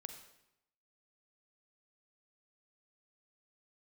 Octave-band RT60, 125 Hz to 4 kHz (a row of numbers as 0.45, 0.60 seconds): 0.95, 0.90, 0.85, 0.85, 0.80, 0.75 seconds